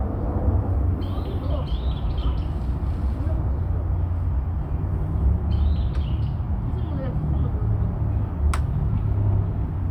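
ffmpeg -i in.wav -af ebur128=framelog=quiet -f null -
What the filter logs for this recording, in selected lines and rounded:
Integrated loudness:
  I:         -25.1 LUFS
  Threshold: -35.1 LUFS
Loudness range:
  LRA:         1.6 LU
  Threshold: -45.2 LUFS
  LRA low:   -26.1 LUFS
  LRA high:  -24.5 LUFS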